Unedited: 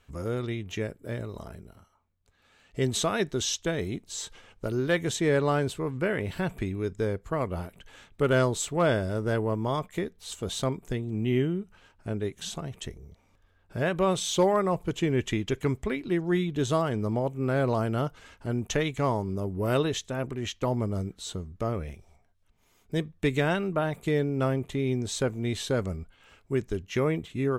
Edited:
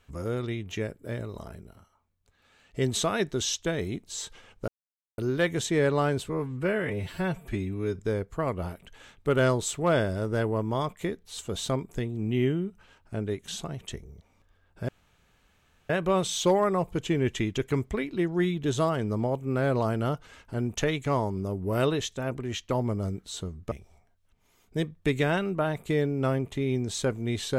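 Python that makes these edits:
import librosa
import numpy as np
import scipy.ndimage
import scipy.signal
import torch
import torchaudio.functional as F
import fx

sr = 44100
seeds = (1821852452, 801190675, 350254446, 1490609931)

y = fx.edit(x, sr, fx.insert_silence(at_s=4.68, length_s=0.5),
    fx.stretch_span(start_s=5.79, length_s=1.13, factor=1.5),
    fx.insert_room_tone(at_s=13.82, length_s=1.01),
    fx.cut(start_s=21.64, length_s=0.25), tone=tone)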